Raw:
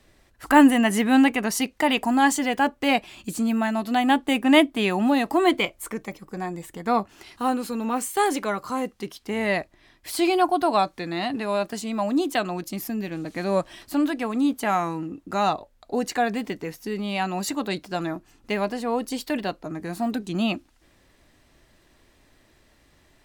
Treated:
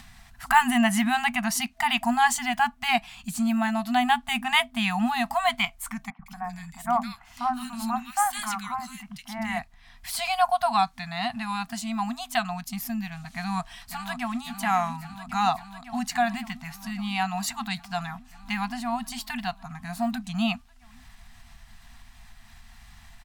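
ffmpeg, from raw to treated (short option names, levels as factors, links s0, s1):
-filter_complex "[0:a]asettb=1/sr,asplit=3[s0][s1][s2];[s0]atrim=end=6.104[s3];[s1]atrim=start=6.1:end=9.59,asetpts=PTS-STARTPTS,afade=t=in:d=0.004:c=qsin,afade=t=out:st=3.486:d=0.004:c=qsin,acrossover=split=230|1900[s4][s5][s6];[s4]adelay=90[s7];[s6]adelay=160[s8];[s7][s5][s8]amix=inputs=3:normalize=0,atrim=end_sample=153909[s9];[s2]atrim=start=9.586[s10];[s3][s9]acrossfade=d=0.004:c1=hsin:c2=qsin[s11];[s11][s10]acrossfade=d=0.004:c1=qsin:c2=hsin,asplit=2[s12][s13];[s13]afade=t=in:st=13.35:d=0.01,afade=t=out:st=14.41:d=0.01,aecho=0:1:550|1100|1650|2200|2750|3300|3850|4400|4950|5500|6050|6600:0.316228|0.252982|0.202386|0.161909|0.129527|0.103622|0.0828972|0.0663178|0.0530542|0.0424434|0.0339547|0.0271638[s14];[s12][s14]amix=inputs=2:normalize=0,afftfilt=real='re*(1-between(b*sr/4096,250,660))':imag='im*(1-between(b*sr/4096,250,660))':win_size=4096:overlap=0.75,asubboost=boost=2.5:cutoff=66,acompressor=mode=upward:threshold=0.0112:ratio=2.5"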